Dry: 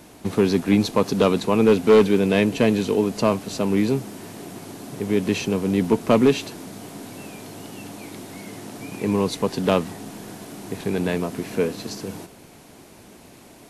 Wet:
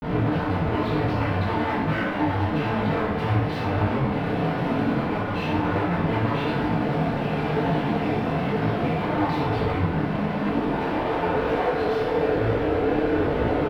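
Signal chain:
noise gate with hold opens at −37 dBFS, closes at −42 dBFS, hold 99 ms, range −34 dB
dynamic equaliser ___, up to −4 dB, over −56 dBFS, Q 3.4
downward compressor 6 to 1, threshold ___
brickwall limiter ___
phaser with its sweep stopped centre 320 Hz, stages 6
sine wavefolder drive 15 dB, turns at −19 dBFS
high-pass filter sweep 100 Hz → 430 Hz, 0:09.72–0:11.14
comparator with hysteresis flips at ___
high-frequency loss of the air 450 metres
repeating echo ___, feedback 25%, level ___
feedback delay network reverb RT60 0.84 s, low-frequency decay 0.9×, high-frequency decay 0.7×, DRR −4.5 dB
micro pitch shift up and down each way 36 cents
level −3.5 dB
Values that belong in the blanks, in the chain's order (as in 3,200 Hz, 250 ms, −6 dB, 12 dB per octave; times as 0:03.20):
7,700 Hz, −25 dBFS, −18.5 dBFS, −27.5 dBFS, 63 ms, −6.5 dB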